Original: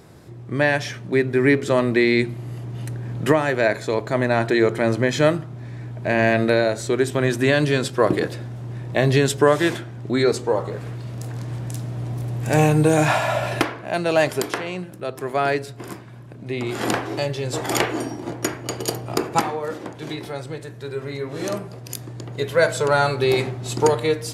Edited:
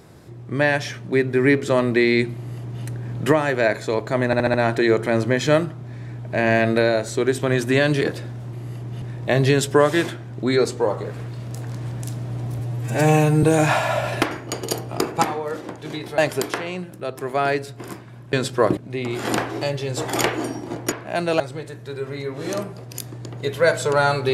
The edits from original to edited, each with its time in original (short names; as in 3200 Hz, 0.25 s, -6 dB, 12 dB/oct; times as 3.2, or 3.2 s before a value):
2.35–2.84 copy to 8.69
4.26 stutter 0.07 s, 5 plays
7.73–8.17 move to 16.33
12.26–12.82 stretch 1.5×
13.7–14.18 swap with 18.48–20.35